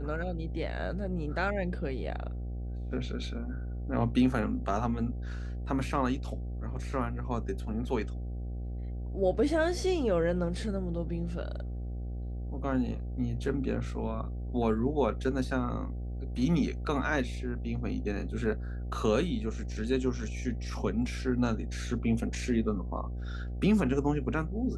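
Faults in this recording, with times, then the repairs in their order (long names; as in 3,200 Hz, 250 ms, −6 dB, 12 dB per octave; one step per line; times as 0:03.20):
mains buzz 60 Hz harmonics 13 −36 dBFS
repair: hum removal 60 Hz, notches 13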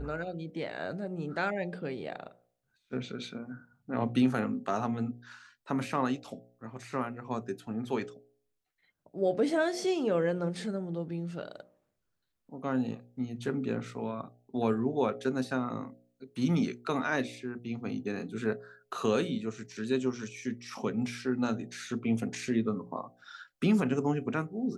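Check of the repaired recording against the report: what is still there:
none of them is left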